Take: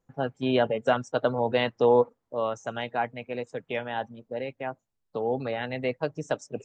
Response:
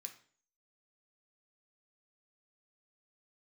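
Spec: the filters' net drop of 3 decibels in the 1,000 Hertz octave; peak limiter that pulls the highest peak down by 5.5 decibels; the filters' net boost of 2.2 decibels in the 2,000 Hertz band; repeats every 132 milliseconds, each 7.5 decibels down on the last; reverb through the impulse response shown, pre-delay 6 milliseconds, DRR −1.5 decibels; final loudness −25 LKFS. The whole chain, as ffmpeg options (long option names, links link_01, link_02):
-filter_complex "[0:a]equalizer=frequency=1000:width_type=o:gain=-5,equalizer=frequency=2000:width_type=o:gain=4.5,alimiter=limit=-15.5dB:level=0:latency=1,aecho=1:1:132|264|396|528|660:0.422|0.177|0.0744|0.0312|0.0131,asplit=2[link_01][link_02];[1:a]atrim=start_sample=2205,adelay=6[link_03];[link_02][link_03]afir=irnorm=-1:irlink=0,volume=7.5dB[link_04];[link_01][link_04]amix=inputs=2:normalize=0,volume=2dB"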